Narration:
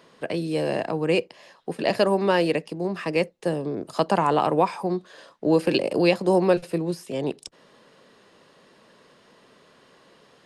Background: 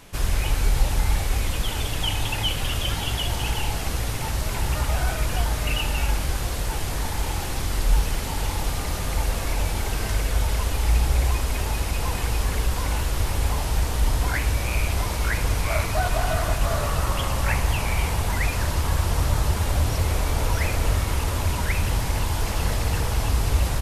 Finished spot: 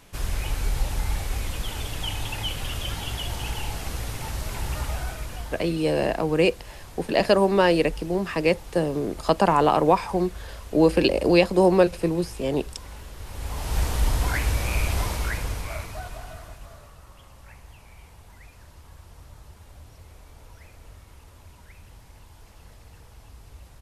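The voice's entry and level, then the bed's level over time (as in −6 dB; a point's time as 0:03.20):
5.30 s, +2.0 dB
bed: 0:04.85 −5 dB
0:05.81 −16.5 dB
0:13.17 −16.5 dB
0:13.80 −1 dB
0:15.05 −1 dB
0:16.97 −25 dB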